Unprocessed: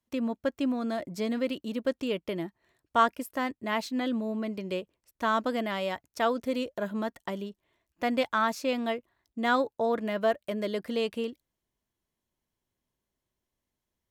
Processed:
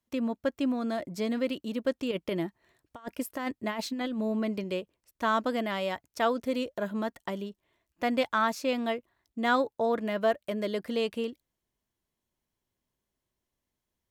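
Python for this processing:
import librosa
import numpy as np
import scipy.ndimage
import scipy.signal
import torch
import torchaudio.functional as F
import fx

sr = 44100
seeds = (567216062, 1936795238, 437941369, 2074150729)

y = fx.over_compress(x, sr, threshold_db=-31.0, ratio=-0.5, at=(2.11, 4.64))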